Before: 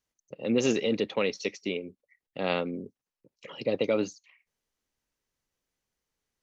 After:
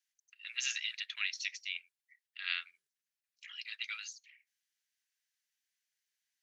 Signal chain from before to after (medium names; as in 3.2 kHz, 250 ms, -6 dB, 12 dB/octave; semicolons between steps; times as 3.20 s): elliptic high-pass 1.6 kHz, stop band 60 dB